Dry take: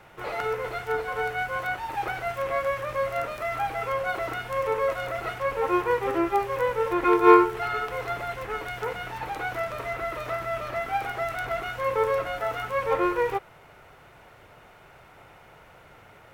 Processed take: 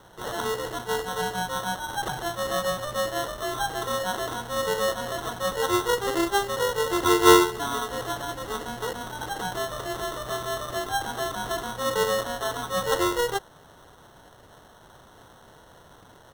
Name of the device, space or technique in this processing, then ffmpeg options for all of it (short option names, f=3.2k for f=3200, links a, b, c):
crushed at another speed: -af "asetrate=35280,aresample=44100,acrusher=samples=23:mix=1:aa=0.000001,asetrate=55125,aresample=44100"